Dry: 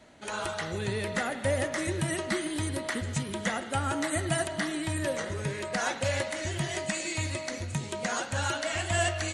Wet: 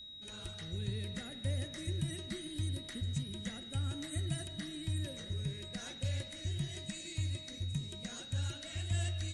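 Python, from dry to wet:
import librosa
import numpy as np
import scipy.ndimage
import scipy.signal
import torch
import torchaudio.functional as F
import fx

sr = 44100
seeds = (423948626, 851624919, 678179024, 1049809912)

y = x + 10.0 ** (-34.0 / 20.0) * np.sin(2.0 * np.pi * 3800.0 * np.arange(len(x)) / sr)
y = fx.tone_stack(y, sr, knobs='10-0-1')
y = F.gain(torch.from_numpy(y), 8.5).numpy()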